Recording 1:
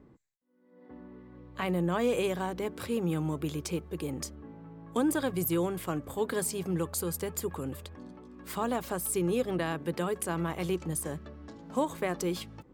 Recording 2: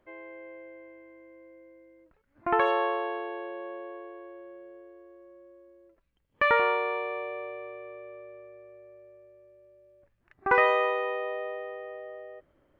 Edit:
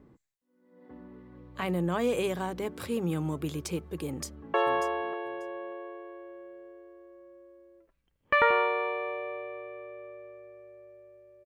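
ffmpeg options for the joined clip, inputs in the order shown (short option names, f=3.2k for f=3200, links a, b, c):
-filter_complex "[0:a]apad=whole_dur=11.45,atrim=end=11.45,atrim=end=4.542[a];[1:a]atrim=start=2.628:end=9.54[b];[a][b]acrossfade=d=0.004:c1=hsin:c2=hsin,asplit=2[c][d];[d]afade=t=in:st=4.07:d=0.01,afade=t=out:st=4.54:d=0.01,aecho=0:1:590|1180:0.298538|0.0447807[e];[c][e]amix=inputs=2:normalize=0"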